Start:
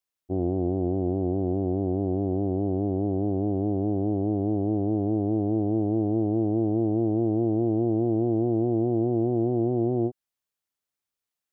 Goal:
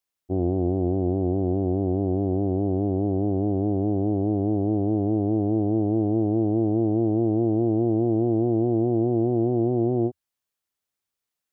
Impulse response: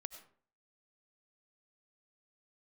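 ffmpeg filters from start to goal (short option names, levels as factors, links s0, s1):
-af "equalizer=f=85:w=4.9:g=2.5,volume=1.26"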